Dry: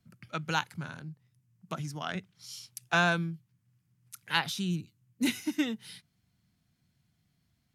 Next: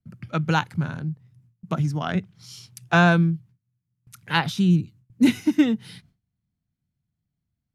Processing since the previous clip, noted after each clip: gate with hold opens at -60 dBFS; tilt EQ -2.5 dB/octave; trim +7.5 dB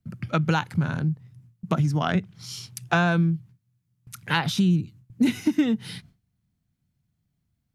in parallel at -1 dB: peak limiter -12 dBFS, peak gain reduction 8 dB; on the sum: compression 3:1, threshold -20 dBFS, peak gain reduction 9 dB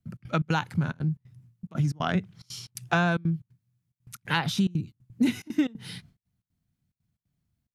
trance gate "xx.xx.xxx" 180 bpm -24 dB; trim -2.5 dB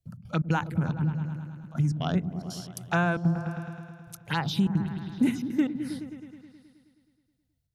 touch-sensitive phaser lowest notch 220 Hz, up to 4.8 kHz, full sweep at -20.5 dBFS; on a send: delay with an opening low-pass 106 ms, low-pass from 200 Hz, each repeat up 1 oct, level -6 dB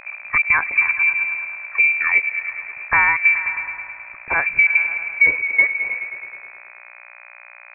mains buzz 60 Hz, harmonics 32, -52 dBFS -3 dB/octave; frequency inversion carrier 2.5 kHz; trim +9 dB

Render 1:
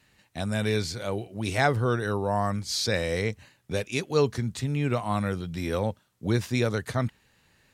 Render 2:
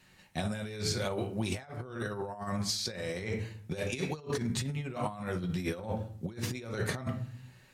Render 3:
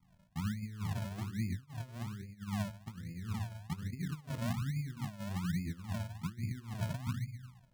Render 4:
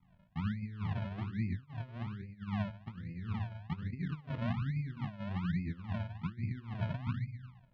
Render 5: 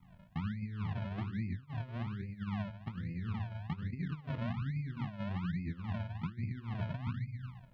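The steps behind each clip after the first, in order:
on a send at -3 dB: reverberation RT60 0.50 s, pre-delay 5 ms; on the sum: compressor with a negative ratio -30 dBFS, ratio -0.5; trim -4 dB
inverse Chebyshev low-pass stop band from 770 Hz, stop band 60 dB; decimation with a swept rate 38×, swing 100% 1.2 Hz
low-pass 3.3 kHz 24 dB/octave; trim +1 dB
compression 3:1, threshold -44 dBFS, peak gain reduction 11 dB; trim +7 dB

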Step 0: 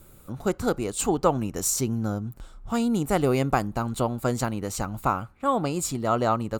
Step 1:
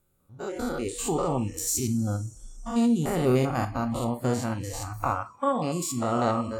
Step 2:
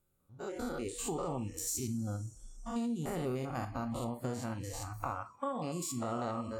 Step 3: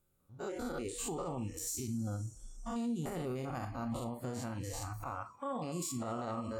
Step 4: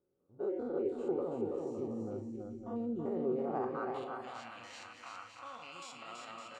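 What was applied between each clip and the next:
spectrogram pixelated in time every 100 ms; two-slope reverb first 0.32 s, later 4.6 s, from -18 dB, DRR 6 dB; spectral noise reduction 19 dB
compression, threshold -25 dBFS, peak gain reduction 8 dB; trim -7 dB
peak limiter -30.5 dBFS, peak gain reduction 10.5 dB; trim +1 dB
band-pass sweep 410 Hz -> 2.6 kHz, 3.32–4.07 s; distance through air 63 m; on a send: bouncing-ball echo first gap 330 ms, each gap 0.7×, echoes 5; on the sum: trim +7 dB

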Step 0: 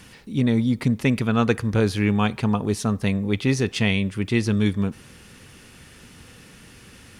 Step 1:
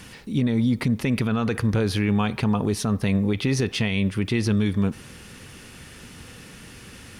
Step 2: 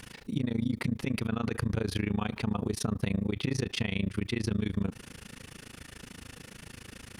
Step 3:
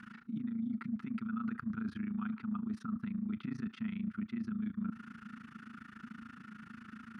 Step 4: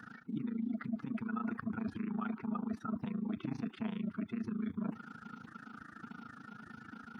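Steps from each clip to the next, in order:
dynamic bell 7.4 kHz, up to -6 dB, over -55 dBFS, Q 2.7; peak limiter -17.5 dBFS, peak gain reduction 10.5 dB; trim +3.5 dB
compression 2.5:1, threshold -25 dBFS, peak gain reduction 5.5 dB; AM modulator 27 Hz, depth 95%
two resonant band-passes 550 Hz, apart 2.6 oct; reverse; compression, threshold -42 dBFS, peak gain reduction 11.5 dB; reverse; trim +7.5 dB
coarse spectral quantiser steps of 30 dB; high-order bell 580 Hz +13.5 dB

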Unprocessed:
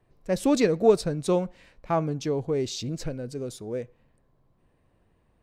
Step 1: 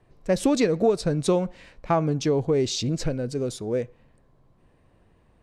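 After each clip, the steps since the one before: compression 6:1, threshold -23 dBFS, peak gain reduction 10.5 dB; low-pass 10 kHz 12 dB/octave; trim +6 dB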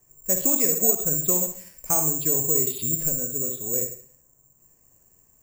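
reverberation RT60 0.55 s, pre-delay 45 ms, DRR 5.5 dB; careless resampling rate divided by 6×, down filtered, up zero stuff; trim -8.5 dB

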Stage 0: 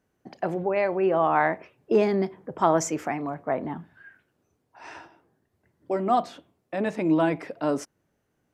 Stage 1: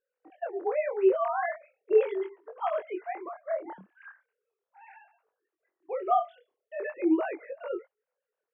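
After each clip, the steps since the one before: formants replaced by sine waves; chorus 0.39 Hz, delay 20 ms, depth 6.9 ms; trim -1.5 dB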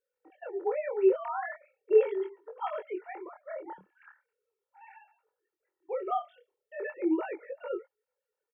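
comb 2.2 ms, depth 67%; trim -4 dB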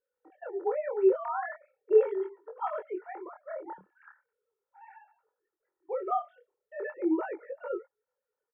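resonant high shelf 2 kHz -8.5 dB, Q 1.5

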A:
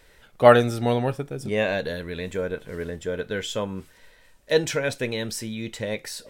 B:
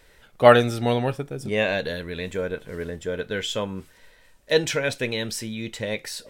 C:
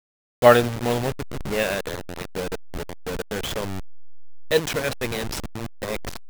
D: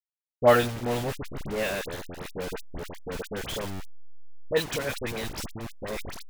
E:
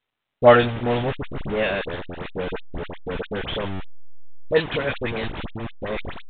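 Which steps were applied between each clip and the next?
dynamic bell 3 kHz, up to +4 dB, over -40 dBFS, Q 0.95
send-on-delta sampling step -22.5 dBFS
phase dispersion highs, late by 57 ms, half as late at 1.6 kHz; trim -5 dB
trim +6 dB; µ-law 64 kbps 8 kHz

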